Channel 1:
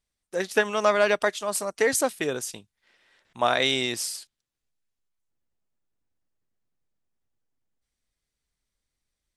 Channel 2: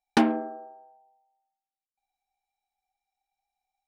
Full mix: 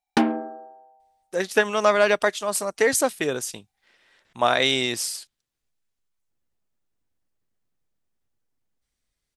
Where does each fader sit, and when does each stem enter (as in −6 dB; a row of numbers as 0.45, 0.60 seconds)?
+2.5, +1.0 decibels; 1.00, 0.00 seconds